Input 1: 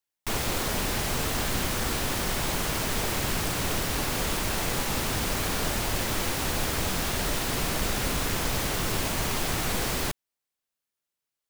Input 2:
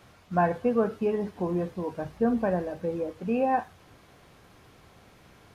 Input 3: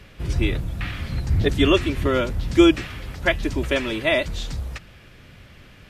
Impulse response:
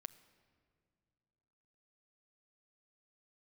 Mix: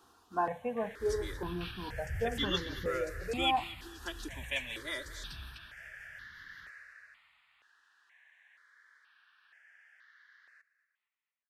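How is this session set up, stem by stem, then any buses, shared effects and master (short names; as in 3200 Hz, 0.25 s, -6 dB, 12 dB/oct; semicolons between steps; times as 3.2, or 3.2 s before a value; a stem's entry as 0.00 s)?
6.63 s -9.5 dB -> 7.42 s -21 dB, 0.50 s, no send, echo send -18 dB, ladder band-pass 1800 Hz, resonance 80%
-4.5 dB, 0.00 s, send -5.5 dB, no echo send, low shelf 210 Hz -11 dB
-9.0 dB, 0.80 s, no send, echo send -17 dB, tilt shelf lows -8 dB, about 1400 Hz; rotary speaker horn 5.5 Hz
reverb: on, RT60 2.4 s, pre-delay 7 ms
echo: feedback echo 0.233 s, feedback 58%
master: step phaser 2.1 Hz 580–2500 Hz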